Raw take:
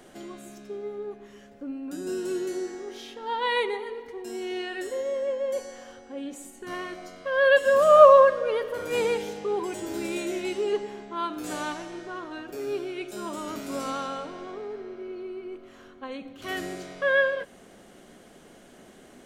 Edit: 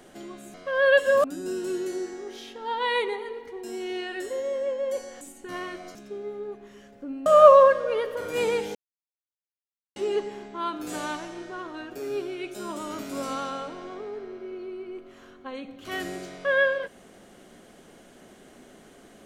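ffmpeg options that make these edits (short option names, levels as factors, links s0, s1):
-filter_complex "[0:a]asplit=8[s0][s1][s2][s3][s4][s5][s6][s7];[s0]atrim=end=0.542[s8];[s1]atrim=start=7.128:end=7.832[s9];[s2]atrim=start=1.848:end=5.822[s10];[s3]atrim=start=6.388:end=7.132[s11];[s4]atrim=start=0.538:end=1.852[s12];[s5]atrim=start=7.828:end=9.32,asetpts=PTS-STARTPTS,afade=t=out:st=1.488:d=0.004:c=hsin[s13];[s6]atrim=start=9.32:end=10.53,asetpts=PTS-STARTPTS,volume=0[s14];[s7]atrim=start=10.53,asetpts=PTS-STARTPTS,afade=t=in:d=0.004:c=hsin[s15];[s8][s9]acrossfade=d=0.004:c1=hsin:c2=hsin[s16];[s16][s10]acrossfade=d=0.004:c1=hsin:c2=hsin[s17];[s17][s11]acrossfade=d=0.004:c1=hsin:c2=hsin[s18];[s18][s12]acrossfade=d=0.004:c1=hsin:c2=hsin[s19];[s13][s14][s15]concat=n=3:v=0:a=1[s20];[s19][s20]acrossfade=d=0.004:c1=hsin:c2=hsin"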